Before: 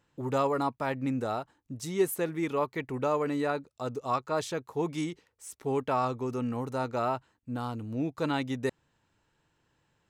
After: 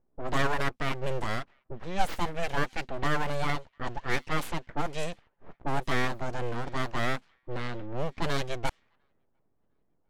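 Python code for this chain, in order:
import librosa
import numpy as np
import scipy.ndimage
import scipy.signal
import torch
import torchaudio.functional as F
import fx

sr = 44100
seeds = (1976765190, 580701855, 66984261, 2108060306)

y = np.abs(x)
y = fx.echo_wet_highpass(y, sr, ms=701, feedback_pct=55, hz=3000.0, wet_db=-20)
y = fx.env_lowpass(y, sr, base_hz=500.0, full_db=-27.0)
y = F.gain(torch.from_numpy(y), 3.5).numpy()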